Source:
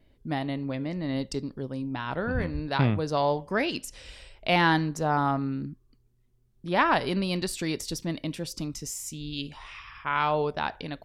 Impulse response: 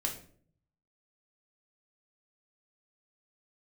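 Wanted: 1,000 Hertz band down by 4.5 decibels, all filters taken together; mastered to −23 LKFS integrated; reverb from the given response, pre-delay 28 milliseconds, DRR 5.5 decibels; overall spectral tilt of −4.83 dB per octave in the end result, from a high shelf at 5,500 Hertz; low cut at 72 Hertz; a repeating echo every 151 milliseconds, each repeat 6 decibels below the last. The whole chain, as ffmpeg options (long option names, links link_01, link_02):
-filter_complex "[0:a]highpass=72,equalizer=frequency=1000:width_type=o:gain=-5.5,highshelf=frequency=5500:gain=-6.5,aecho=1:1:151|302|453|604|755|906:0.501|0.251|0.125|0.0626|0.0313|0.0157,asplit=2[link_01][link_02];[1:a]atrim=start_sample=2205,adelay=28[link_03];[link_02][link_03]afir=irnorm=-1:irlink=0,volume=-8.5dB[link_04];[link_01][link_04]amix=inputs=2:normalize=0,volume=5dB"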